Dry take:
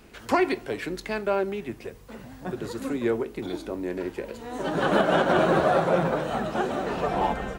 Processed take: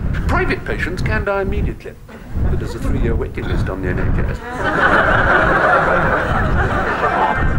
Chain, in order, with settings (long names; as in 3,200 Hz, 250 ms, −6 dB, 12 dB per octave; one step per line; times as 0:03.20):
wind on the microphone 110 Hz −22 dBFS
brickwall limiter −14.5 dBFS, peak gain reduction 11.5 dB
parametric band 1,500 Hz +12 dB 1.1 octaves, from 0:01.28 +5 dB, from 0:03.36 +14.5 dB
level +5.5 dB